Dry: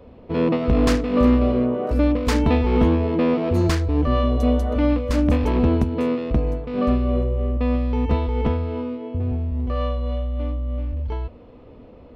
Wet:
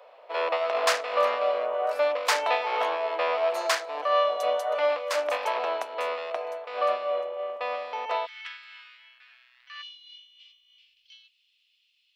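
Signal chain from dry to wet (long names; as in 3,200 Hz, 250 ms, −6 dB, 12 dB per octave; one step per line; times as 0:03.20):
sub-octave generator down 2 octaves, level −1 dB
elliptic high-pass filter 600 Hz, stop band 80 dB, from 0:08.25 1,600 Hz, from 0:09.81 2,900 Hz
level +3.5 dB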